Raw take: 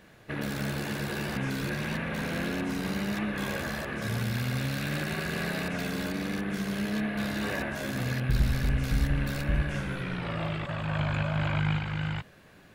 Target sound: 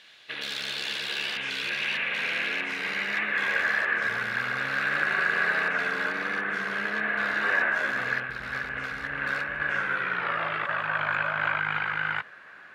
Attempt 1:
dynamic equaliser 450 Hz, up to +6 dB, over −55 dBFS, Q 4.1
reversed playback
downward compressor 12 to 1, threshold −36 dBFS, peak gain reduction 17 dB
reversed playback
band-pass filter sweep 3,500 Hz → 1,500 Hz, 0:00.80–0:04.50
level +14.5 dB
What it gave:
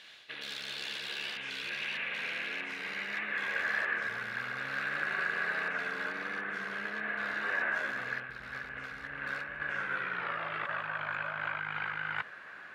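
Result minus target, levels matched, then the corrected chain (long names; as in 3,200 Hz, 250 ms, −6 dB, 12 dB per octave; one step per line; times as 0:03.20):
downward compressor: peak gain reduction +9 dB
dynamic equaliser 450 Hz, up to +6 dB, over −55 dBFS, Q 4.1
reversed playback
downward compressor 12 to 1, threshold −26 dBFS, peak gain reduction 8 dB
reversed playback
band-pass filter sweep 3,500 Hz → 1,500 Hz, 0:00.80–0:04.50
level +14.5 dB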